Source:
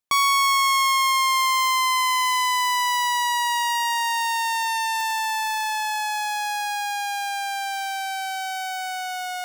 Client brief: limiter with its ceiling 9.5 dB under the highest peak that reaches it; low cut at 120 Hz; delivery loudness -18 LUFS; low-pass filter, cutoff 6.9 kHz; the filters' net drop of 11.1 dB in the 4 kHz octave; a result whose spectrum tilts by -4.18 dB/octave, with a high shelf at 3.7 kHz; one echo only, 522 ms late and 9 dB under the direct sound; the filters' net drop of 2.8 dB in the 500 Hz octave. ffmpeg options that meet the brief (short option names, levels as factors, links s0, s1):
-af "highpass=120,lowpass=6900,equalizer=f=500:t=o:g=-5,highshelf=f=3700:g=-9,equalizer=f=4000:t=o:g=-9,alimiter=level_in=1.41:limit=0.0631:level=0:latency=1,volume=0.708,aecho=1:1:522:0.355,volume=4.73"